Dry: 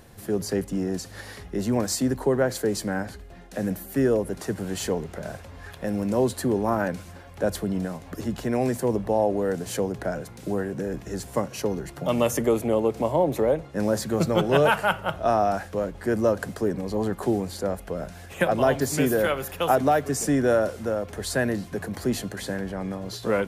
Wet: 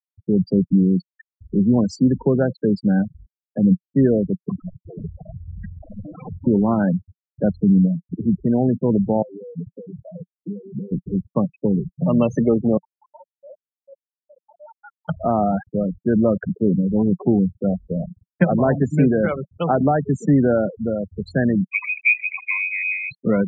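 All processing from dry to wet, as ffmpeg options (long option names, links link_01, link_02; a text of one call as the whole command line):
ffmpeg -i in.wav -filter_complex "[0:a]asettb=1/sr,asplit=3[link_01][link_02][link_03];[link_01]atrim=end=4.494[link_04];[link_02]atrim=start=4.49:end=6.47,asetpts=PTS-STARTPTS,afade=type=in:duration=0.004:curve=qsin,afade=type=out:start_time=1.976:duration=0.004:curve=qsin,asubboost=boost=11:cutoff=97,acompressor=threshold=-27dB:ratio=3:attack=3.2:release=140:knee=1:detection=peak,aeval=exprs='(mod(23.7*val(0)+1,2)-1)/23.7':channel_layout=same[link_05];[link_03]atrim=start=6.466[link_06];[link_04][link_05]acrossfade=duration=0.004:curve1=hsin:curve2=qsin[link_07];[link_07][link_06]acrossfade=duration=0.004:curve1=qsin:curve2=hsin,asettb=1/sr,asplit=3[link_08][link_09][link_10];[link_08]atrim=end=9.224[link_11];[link_09]atrim=start=9.22:end=10.92,asetpts=PTS-STARTPTS,afade=type=in:duration=0.004:curve=qsin,afade=type=out:start_time=1.696:duration=0.004:curve=qsin,acompressor=threshold=-32dB:ratio=8:attack=3.2:release=140:knee=1:detection=peak,asoftclip=type=hard:threshold=-27.5dB[link_12];[link_10]atrim=start=10.916[link_13];[link_11][link_12]acrossfade=duration=0.004:curve1=hsin:curve2=qsin[link_14];[link_14][link_13]acrossfade=duration=0.004:curve1=qsin:curve2=hsin,asettb=1/sr,asplit=3[link_15][link_16][link_17];[link_15]atrim=end=12.774[link_18];[link_16]atrim=start=12.77:end=15.09,asetpts=PTS-STARTPTS,afade=type=in:duration=0.004:curve=qsin,afade=type=out:start_time=2.316:duration=0.004:curve=qsin,highpass=frequency=720:width=0.5412,highpass=frequency=720:width=1.3066,acompressor=threshold=-35dB:ratio=10:attack=3.2:release=140:knee=1:detection=peak[link_19];[link_17]atrim=start=15.086[link_20];[link_18][link_19]acrossfade=duration=0.004:curve1=hsin:curve2=qsin[link_21];[link_21][link_20]acrossfade=duration=0.004:curve1=qsin:curve2=hsin,asettb=1/sr,asplit=3[link_22][link_23][link_24];[link_22]atrim=end=21.664[link_25];[link_23]atrim=start=21.66:end=23.11,asetpts=PTS-STARTPTS,afade=type=in:duration=0.004:curve=qsin,afade=type=out:start_time=1.446:duration=0.004:curve=qsin,highpass=150,equalizer=frequency=240:width=0.41:gain=9,lowpass=frequency=2300:width_type=q:width=0.5098,lowpass=frequency=2300:width_type=q:width=0.6013,lowpass=frequency=2300:width_type=q:width=0.9,lowpass=frequency=2300:width_type=q:width=2.563,afreqshift=-2700[link_26];[link_24]atrim=start=23.106[link_27];[link_25][link_26]acrossfade=duration=0.004:curve1=hsin:curve2=qsin[link_28];[link_28][link_27]acrossfade=duration=0.004:curve1=qsin:curve2=hsin,afftfilt=real='re*gte(hypot(re,im),0.0891)':imag='im*gte(hypot(re,im),0.0891)':win_size=1024:overlap=0.75,lowpass=frequency=5700:width=0.5412,lowpass=frequency=5700:width=1.3066,equalizer=frequency=180:width_type=o:width=1.1:gain=15" out.wav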